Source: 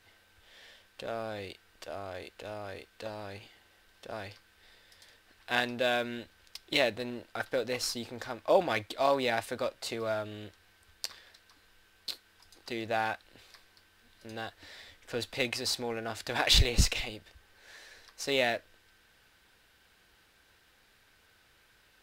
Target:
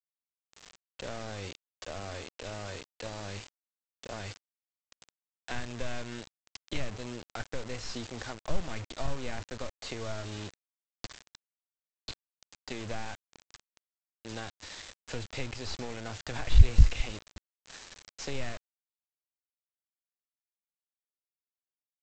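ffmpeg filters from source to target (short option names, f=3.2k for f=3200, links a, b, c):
-filter_complex "[0:a]aeval=exprs='(tanh(7.94*val(0)+0.7)-tanh(0.7))/7.94':c=same,agate=range=-33dB:threshold=-59dB:ratio=3:detection=peak,acrossover=split=2900[a][b];[b]acompressor=threshold=-52dB:ratio=4:attack=1:release=60[c];[a][c]amix=inputs=2:normalize=0,lowshelf=f=110:g=10.5,acrossover=split=160[d][e];[e]acompressor=threshold=-42dB:ratio=16[f];[d][f]amix=inputs=2:normalize=0,aemphasis=mode=production:type=50kf,aresample=16000,acrusher=bits=7:mix=0:aa=0.000001,aresample=44100,volume=5dB"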